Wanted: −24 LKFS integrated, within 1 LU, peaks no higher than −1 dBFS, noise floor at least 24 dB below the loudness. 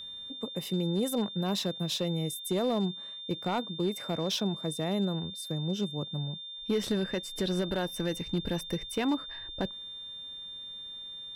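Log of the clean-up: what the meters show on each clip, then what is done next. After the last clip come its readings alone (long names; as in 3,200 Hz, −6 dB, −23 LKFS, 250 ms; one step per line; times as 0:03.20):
share of clipped samples 0.7%; peaks flattened at −22.0 dBFS; interfering tone 3,600 Hz; level of the tone −40 dBFS; integrated loudness −32.5 LKFS; sample peak −22.0 dBFS; target loudness −24.0 LKFS
→ clipped peaks rebuilt −22 dBFS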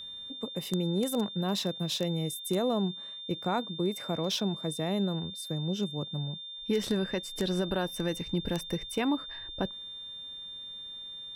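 share of clipped samples 0.0%; interfering tone 3,600 Hz; level of the tone −40 dBFS
→ notch filter 3,600 Hz, Q 30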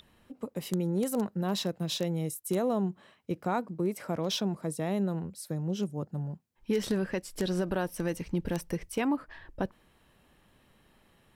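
interfering tone none found; integrated loudness −32.5 LKFS; sample peak −13.0 dBFS; target loudness −24.0 LKFS
→ level +8.5 dB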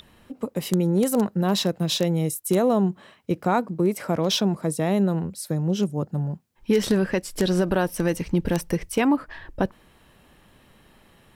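integrated loudness −24.0 LKFS; sample peak −5.0 dBFS; background noise floor −57 dBFS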